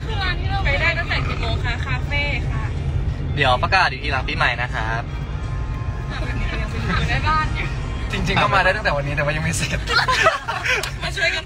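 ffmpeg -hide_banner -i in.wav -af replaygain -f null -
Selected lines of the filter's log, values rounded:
track_gain = -0.3 dB
track_peak = 0.442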